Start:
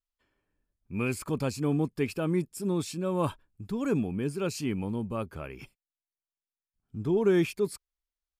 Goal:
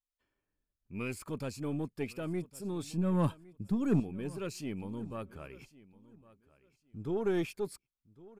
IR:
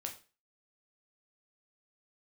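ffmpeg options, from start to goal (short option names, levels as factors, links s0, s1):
-filter_complex "[0:a]asettb=1/sr,asplit=3[s0][s1][s2];[s0]atrim=end=2.834[s3];[s1]atrim=start=2.83:end=4,asetpts=PTS-STARTPTS,afade=t=in:d=0.004:c=qsin,afade=t=out:st=1.166:d=0.004:c=qsin,equalizer=f=180:t=o:w=1.4:g=11.5[s4];[s2]atrim=start=3.996[s5];[s3][s4]acrossfade=d=0.004:c1=hsin:c2=qsin[s6];[s6][s5]acrossfade=d=0.004:c1=qsin:c2=hsin,aeval=exprs='0.316*(cos(1*acos(clip(val(0)/0.316,-1,1)))-cos(1*PI/2))+0.02*(cos(6*acos(clip(val(0)/0.316,-1,1)))-cos(6*PI/2))':c=same,aecho=1:1:1109|2218:0.0944|0.0208,volume=0.422"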